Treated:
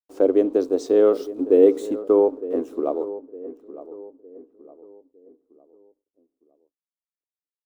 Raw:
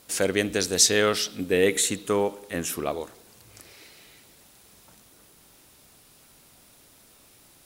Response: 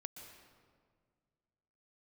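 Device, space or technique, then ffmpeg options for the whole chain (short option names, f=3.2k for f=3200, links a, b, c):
pocket radio on a weak battery: -filter_complex "[0:a]highpass=280,lowpass=4.1k,aeval=exprs='sgn(val(0))*max(abs(val(0))-0.00596,0)':c=same,equalizer=f=1.2k:t=o:w=0.36:g=4.5,asettb=1/sr,asplit=3[a][b][c];[a]atrim=end=1.134[d];[b]atrim=start=1.13:end=1.87,asetpts=PTS-STARTPTS,afade=t=in:d=0.004:c=qsin,afade=t=out:st=0.736:d=0.004:c=qsin,highshelf=f=5.1k:g=6.5[e];[c]atrim=start=1.866[f];[d][e]acrossfade=d=0.004:c1=hsin:c2=qsin[g];[g][f]acrossfade=d=0.004:c1=qsin:c2=hsin,firequalizer=gain_entry='entry(110,0);entry(180,-6);entry(270,13);entry(1800,-22)':delay=0.05:min_phase=1,aemphasis=mode=production:type=50kf,asplit=2[h][i];[i]adelay=909,lowpass=f=1.2k:p=1,volume=-14.5dB,asplit=2[j][k];[k]adelay=909,lowpass=f=1.2k:p=1,volume=0.42,asplit=2[l][m];[m]adelay=909,lowpass=f=1.2k:p=1,volume=0.42,asplit=2[n][o];[o]adelay=909,lowpass=f=1.2k:p=1,volume=0.42[p];[h][j][l][n][p]amix=inputs=5:normalize=0"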